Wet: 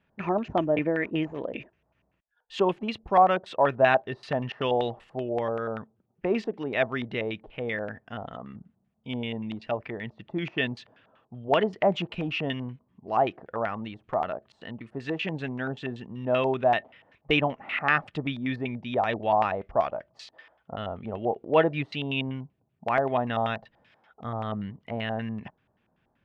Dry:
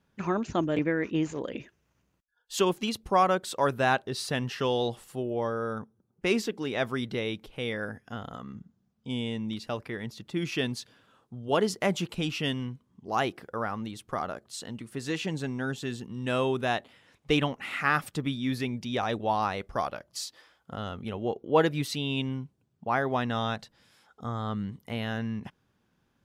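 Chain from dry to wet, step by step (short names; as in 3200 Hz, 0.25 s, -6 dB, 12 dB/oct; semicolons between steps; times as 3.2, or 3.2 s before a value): LFO low-pass square 5.2 Hz 810–2600 Hz; small resonant body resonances 640/1800 Hz, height 7 dB; gain -1 dB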